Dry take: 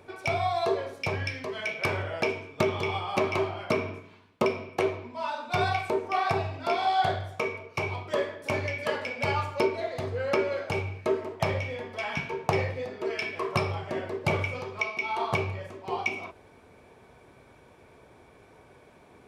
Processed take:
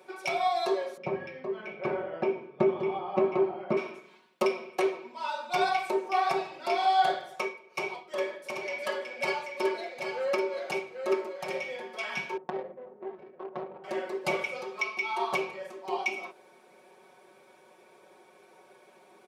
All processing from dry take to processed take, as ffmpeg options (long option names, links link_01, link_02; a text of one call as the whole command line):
ffmpeg -i in.wav -filter_complex "[0:a]asettb=1/sr,asplit=3[link_01][link_02][link_03];[link_01]atrim=end=0.974[link_04];[link_02]atrim=start=0.97:end=3.77,asetpts=PTS-STARTPTS,afade=type=in:duration=0.004:curve=qsin,afade=type=out:start_time=2.796:duration=0.004:curve=qsin,lowpass=frequency=1200:poles=1,aemphasis=mode=reproduction:type=riaa[link_05];[link_03]atrim=start=3.766[link_06];[link_04][link_05]acrossfade=duration=0.004:curve1=hsin:curve2=qsin[link_07];[link_07][link_06]acrossfade=duration=0.004:curve1=qsin:curve2=hsin,asettb=1/sr,asplit=3[link_08][link_09][link_10];[link_08]atrim=end=7.384[link_11];[link_09]atrim=start=7.38:end=11.64,asetpts=PTS-STARTPTS,afade=type=in:duration=0.004:curve=qsin,afade=type=out:start_time=4.256:duration=0.004:curve=qsin,tremolo=f=2.1:d=0.62,aecho=1:1:785:0.501,atrim=end_sample=187866[link_12];[link_10]atrim=start=11.636[link_13];[link_11][link_12]acrossfade=duration=0.004:curve1=hsin:curve2=qsin[link_14];[link_14][link_13]acrossfade=duration=0.004:curve1=qsin:curve2=hsin,asettb=1/sr,asplit=3[link_15][link_16][link_17];[link_15]atrim=end=12.374[link_18];[link_16]atrim=start=12.37:end=13.84,asetpts=PTS-STARTPTS,afade=type=in:duration=0.004:curve=qsin,afade=type=out:start_time=1.466:duration=0.004:curve=qsin,aeval=exprs='max(val(0),0)':channel_layout=same,lowpass=1600,adynamicsmooth=sensitivity=1:basefreq=560[link_19];[link_17]atrim=start=13.836[link_20];[link_18][link_19]acrossfade=duration=0.004:curve1=hsin:curve2=qsin[link_21];[link_21][link_20]acrossfade=duration=0.004:curve1=qsin:curve2=hsin,highpass=400,equalizer=frequency=1500:width=0.43:gain=-5,aecho=1:1:5.4:0.94" out.wav